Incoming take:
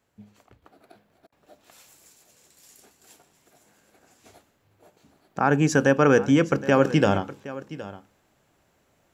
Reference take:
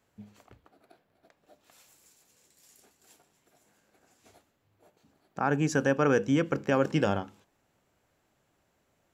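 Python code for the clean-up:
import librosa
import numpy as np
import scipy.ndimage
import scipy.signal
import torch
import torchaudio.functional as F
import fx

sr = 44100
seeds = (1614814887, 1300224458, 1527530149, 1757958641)

y = fx.fix_interpolate(x, sr, at_s=(1.27,), length_ms=51.0)
y = fx.fix_echo_inverse(y, sr, delay_ms=768, level_db=-16.5)
y = fx.fix_level(y, sr, at_s=0.62, step_db=-6.5)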